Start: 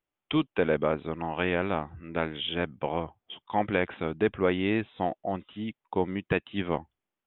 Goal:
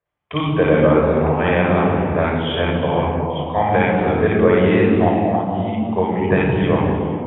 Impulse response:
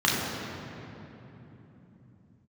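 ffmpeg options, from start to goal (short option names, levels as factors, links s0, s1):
-filter_complex "[0:a]highshelf=f=3300:g=-8[s0];[1:a]atrim=start_sample=2205,afade=t=out:st=0.4:d=0.01,atrim=end_sample=18081,asetrate=24696,aresample=44100[s1];[s0][s1]afir=irnorm=-1:irlink=0,volume=0.398"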